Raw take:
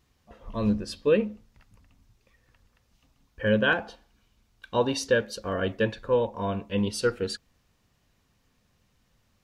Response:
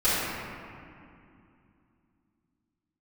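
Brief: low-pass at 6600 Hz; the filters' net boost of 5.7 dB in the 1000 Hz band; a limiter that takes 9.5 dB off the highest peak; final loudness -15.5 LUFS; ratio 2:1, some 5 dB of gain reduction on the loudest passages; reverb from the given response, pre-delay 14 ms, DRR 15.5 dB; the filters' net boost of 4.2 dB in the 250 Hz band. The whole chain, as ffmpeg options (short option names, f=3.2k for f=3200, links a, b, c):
-filter_complex "[0:a]lowpass=6.6k,equalizer=f=250:t=o:g=5,equalizer=f=1k:t=o:g=6.5,acompressor=threshold=-24dB:ratio=2,alimiter=limit=-22dB:level=0:latency=1,asplit=2[a][b];[1:a]atrim=start_sample=2205,adelay=14[c];[b][c]afir=irnorm=-1:irlink=0,volume=-31.5dB[d];[a][d]amix=inputs=2:normalize=0,volume=17dB"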